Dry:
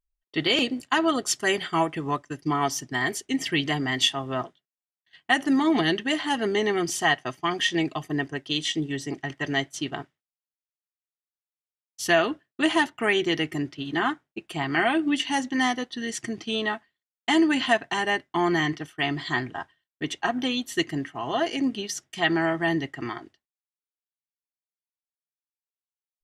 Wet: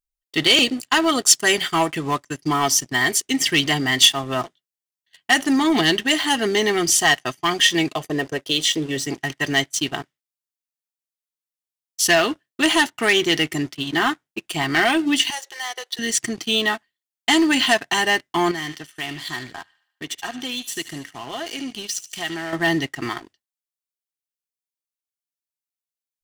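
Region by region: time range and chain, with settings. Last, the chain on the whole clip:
0:07.95–0:08.97: parametric band 520 Hz +13.5 dB 0.56 octaves + downward compressor 1.5 to 1, threshold −29 dBFS + noise gate −47 dBFS, range −10 dB
0:15.30–0:15.99: downward compressor 10 to 1, threshold −30 dBFS + linear-phase brick-wall high-pass 360 Hz
0:18.51–0:22.53: downward compressor 2 to 1, threshold −40 dBFS + delay with a high-pass on its return 74 ms, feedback 55%, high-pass 2,000 Hz, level −8.5 dB
whole clip: leveller curve on the samples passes 2; high-shelf EQ 2,800 Hz +11 dB; level −3.5 dB

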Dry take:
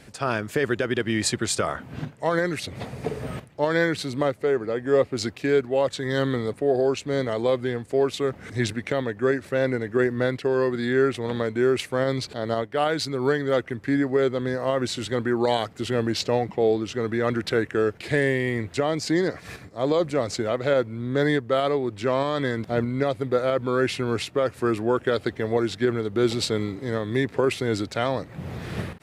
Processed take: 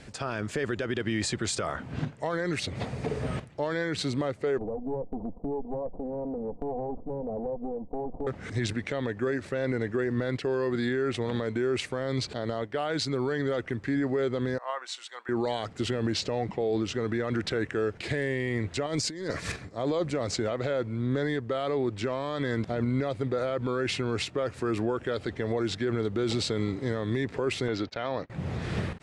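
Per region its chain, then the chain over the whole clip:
0:04.58–0:08.27: lower of the sound and its delayed copy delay 4.1 ms + Butterworth low-pass 870 Hz 48 dB per octave + downward compressor 5 to 1, threshold −30 dBFS
0:14.58–0:15.29: four-pole ladder high-pass 740 Hz, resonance 35% + notch filter 4,800 Hz, Q 24 + multiband upward and downward expander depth 70%
0:18.86–0:19.52: high-shelf EQ 6,200 Hz +10.5 dB + notch filter 750 Hz, Q 7 + compressor whose output falls as the input rises −28 dBFS, ratio −0.5
0:27.68–0:28.30: noise gate −38 dBFS, range −23 dB + moving average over 5 samples + low-shelf EQ 220 Hz −9 dB
whole clip: brickwall limiter −20 dBFS; low-pass filter 8,800 Hz 24 dB per octave; low-shelf EQ 65 Hz +6 dB

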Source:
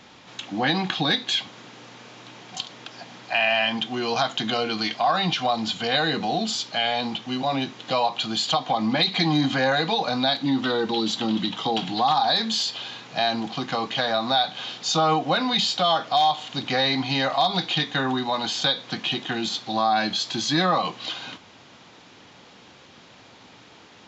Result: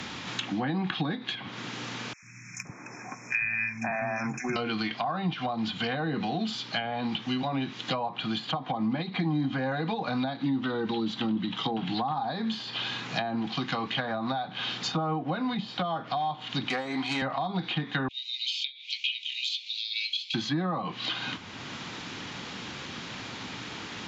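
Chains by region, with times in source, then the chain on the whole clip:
0:02.13–0:04.56: noise gate −32 dBFS, range −11 dB + linear-phase brick-wall band-stop 2,600–5,200 Hz + three-band delay without the direct sound highs, lows, mids 90/520 ms, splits 200/1,700 Hz
0:16.69–0:17.22: phase distortion by the signal itself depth 0.1 ms + high-pass filter 280 Hz
0:18.08–0:20.34: Butterworth high-pass 2,300 Hz 96 dB per octave + bad sample-rate conversion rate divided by 2×, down filtered, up hold
whole clip: treble cut that deepens with the level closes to 900 Hz, closed at −19 dBFS; parametric band 600 Hz −9 dB 1.6 octaves; multiband upward and downward compressor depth 70%

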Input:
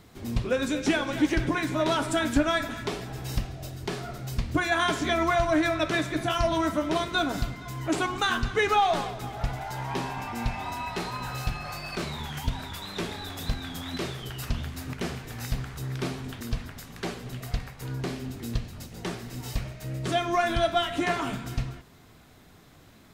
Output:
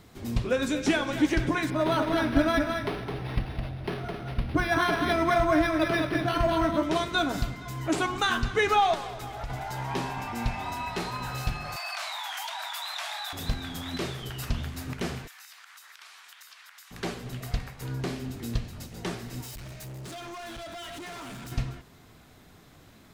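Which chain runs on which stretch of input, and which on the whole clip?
0:01.70–0:06.83: single-tap delay 212 ms −5 dB + linearly interpolated sample-rate reduction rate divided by 6×
0:08.94–0:09.50: parametric band 190 Hz −7.5 dB 1.3 octaves + downward compressor 3 to 1, threshold −32 dBFS
0:11.76–0:13.33: Butterworth high-pass 640 Hz 96 dB per octave + envelope flattener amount 70%
0:15.27–0:16.91: high-pass filter 1,100 Hz 24 dB per octave + downward compressor, threshold −46 dBFS
0:19.42–0:21.52: high-shelf EQ 4,100 Hz +7.5 dB + downward compressor 2.5 to 1, threshold −34 dBFS + hard clipping −38.5 dBFS
whole clip: no processing

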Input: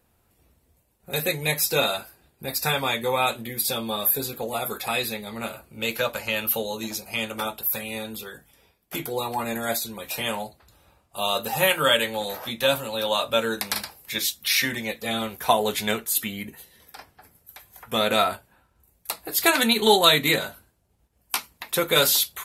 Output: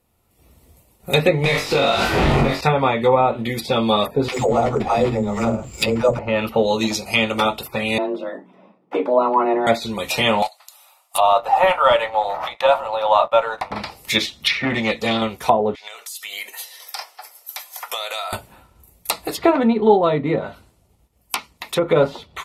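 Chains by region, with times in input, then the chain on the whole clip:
0:01.44–0:02.61: converter with a step at zero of −21 dBFS + downward compressor, threshold −27 dBFS + flutter between parallel walls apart 3.7 metres, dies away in 0.33 s
0:04.28–0:06.19: low-shelf EQ 68 Hz +12 dB + all-pass dispersion lows, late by 123 ms, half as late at 360 Hz + bad sample-rate conversion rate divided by 6×, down none, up zero stuff
0:07.98–0:09.67: low-pass filter 1,100 Hz + frequency shifter +130 Hz
0:10.42–0:13.71: Butterworth high-pass 660 Hz + high-shelf EQ 6,000 Hz +11 dB + leveller curve on the samples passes 2
0:14.48–0:15.22: high-shelf EQ 10,000 Hz −11.5 dB + saturating transformer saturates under 2,100 Hz
0:15.75–0:18.33: high-pass filter 630 Hz 24 dB per octave + parametric band 5,300 Hz +7 dB 0.63 octaves + downward compressor 20 to 1, threshold −36 dBFS
whole clip: notch filter 1,600 Hz, Q 5.1; treble cut that deepens with the level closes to 870 Hz, closed at −19 dBFS; automatic gain control gain up to 15 dB; level −1 dB

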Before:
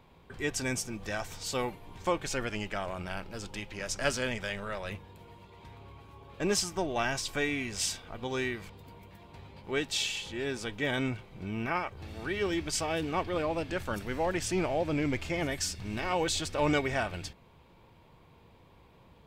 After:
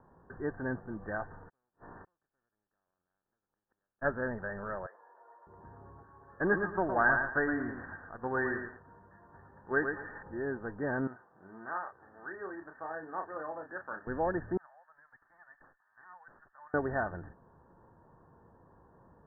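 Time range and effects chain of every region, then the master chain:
0:01.48–0:04.01: compressing power law on the bin magnitudes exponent 0.45 + downward compressor 3 to 1, threshold −39 dBFS + gate with flip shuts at −33 dBFS, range −41 dB
0:04.86–0:05.47: high-pass filter 550 Hz 24 dB per octave + downward compressor 2 to 1, threshold −48 dBFS
0:06.03–0:10.23: noise gate −40 dBFS, range −6 dB + parametric band 1,800 Hz +10 dB 1.5 octaves + feedback echo at a low word length 114 ms, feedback 35%, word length 7 bits, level −5 dB
0:11.07–0:14.07: high-pass filter 1,400 Hz 6 dB per octave + double-tracking delay 32 ms −6.5 dB
0:14.57–0:16.74: high-pass filter 830 Hz 24 dB per octave + first difference + tube saturation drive 34 dB, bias 0.25
whole clip: Chebyshev low-pass filter 1,800 Hz, order 10; low-shelf EQ 120 Hz −5.5 dB

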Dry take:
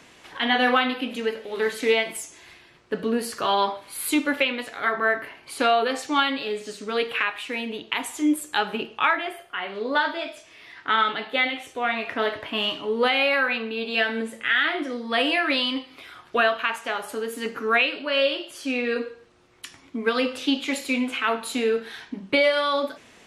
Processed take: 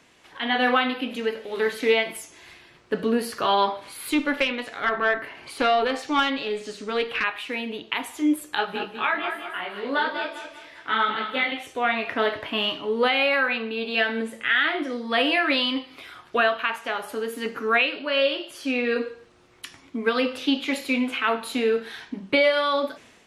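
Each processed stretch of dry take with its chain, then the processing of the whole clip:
0:03.79–0:07.24: low-pass filter 10,000 Hz + upward compression, threshold −36 dBFS + tube saturation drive 13 dB, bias 0.35
0:08.55–0:11.52: repeating echo 198 ms, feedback 40%, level −8 dB + micro pitch shift up and down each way 27 cents
whole clip: dynamic equaliser 7,800 Hz, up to −8 dB, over −49 dBFS, Q 1.4; automatic gain control gain up to 9 dB; level −6.5 dB

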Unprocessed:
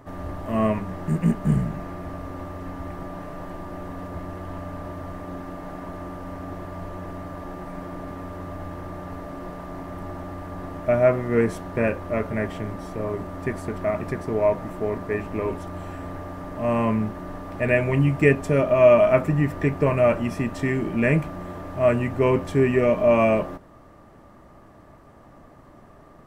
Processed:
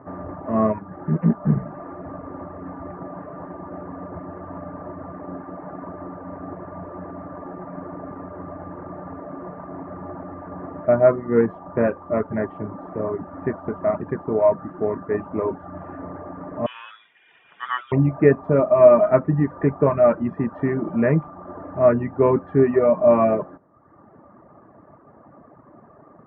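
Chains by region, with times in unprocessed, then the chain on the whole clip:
0:16.66–0:17.92: low-shelf EQ 260 Hz −8.5 dB + voice inversion scrambler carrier 3,600 Hz
whole clip: high-pass filter 130 Hz 12 dB per octave; reverb reduction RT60 0.91 s; low-pass filter 1,500 Hz 24 dB per octave; level +4 dB

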